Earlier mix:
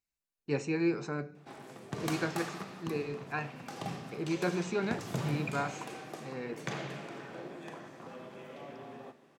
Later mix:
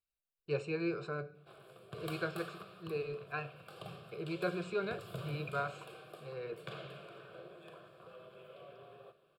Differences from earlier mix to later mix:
background -4.5 dB; master: add fixed phaser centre 1300 Hz, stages 8

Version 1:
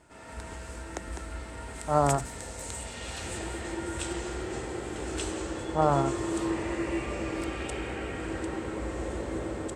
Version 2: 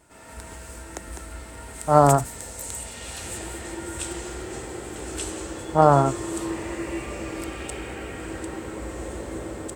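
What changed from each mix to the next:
speech +8.5 dB; background: remove air absorption 58 m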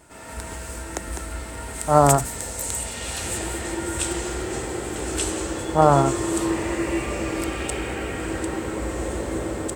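background +6.0 dB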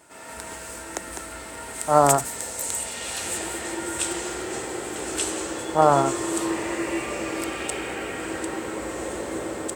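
master: add HPF 330 Hz 6 dB/oct

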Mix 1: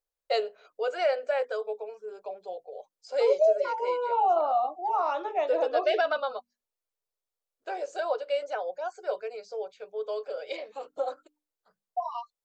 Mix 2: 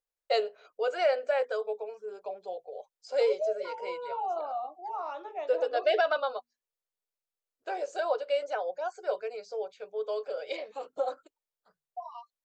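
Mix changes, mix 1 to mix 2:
first voice: remove notches 50/100/150/200/250/300 Hz; second voice -9.0 dB

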